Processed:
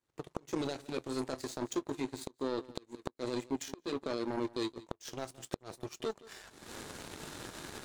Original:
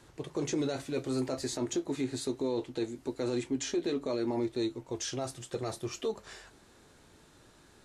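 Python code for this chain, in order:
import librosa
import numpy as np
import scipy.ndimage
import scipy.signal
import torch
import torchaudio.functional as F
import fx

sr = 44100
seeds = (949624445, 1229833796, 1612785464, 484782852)

y = fx.recorder_agc(x, sr, target_db=-27.0, rise_db_per_s=38.0, max_gain_db=30)
y = fx.low_shelf(y, sr, hz=80.0, db=-9.0)
y = fx.power_curve(y, sr, exponent=2.0)
y = y + 10.0 ** (-20.0 / 20.0) * np.pad(y, (int(171 * sr / 1000.0), 0))[:len(y)]
y = fx.gate_flip(y, sr, shuts_db=-26.0, range_db=-25)
y = y * 10.0 ** (5.0 / 20.0)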